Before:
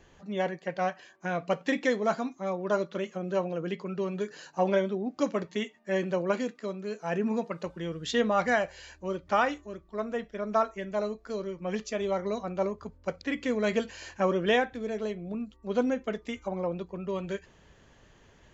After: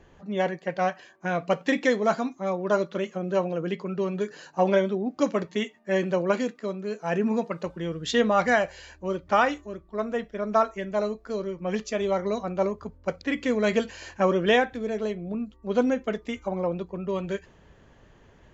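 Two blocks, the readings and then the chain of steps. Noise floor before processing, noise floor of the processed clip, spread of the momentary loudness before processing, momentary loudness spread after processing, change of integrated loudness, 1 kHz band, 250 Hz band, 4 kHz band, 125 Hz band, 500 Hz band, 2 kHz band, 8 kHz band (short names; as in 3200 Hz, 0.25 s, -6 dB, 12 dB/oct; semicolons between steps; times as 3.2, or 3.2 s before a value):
-59 dBFS, -56 dBFS, 10 LU, 10 LU, +4.0 dB, +4.0 dB, +4.0 dB, +3.5 dB, +4.0 dB, +4.0 dB, +4.0 dB, n/a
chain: mismatched tape noise reduction decoder only; gain +4 dB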